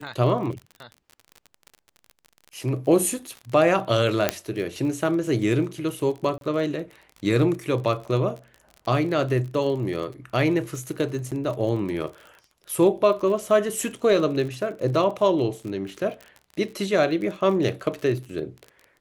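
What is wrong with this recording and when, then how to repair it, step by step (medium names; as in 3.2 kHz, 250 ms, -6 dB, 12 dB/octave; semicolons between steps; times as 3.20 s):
crackle 35 per s -32 dBFS
4.29 s: pop -4 dBFS
6.38–6.41 s: dropout 32 ms
11.31–11.32 s: dropout 7.4 ms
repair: de-click; interpolate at 6.38 s, 32 ms; interpolate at 11.31 s, 7.4 ms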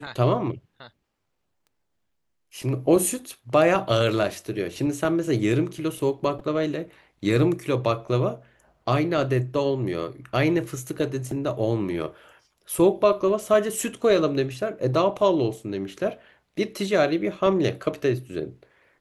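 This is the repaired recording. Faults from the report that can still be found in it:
nothing left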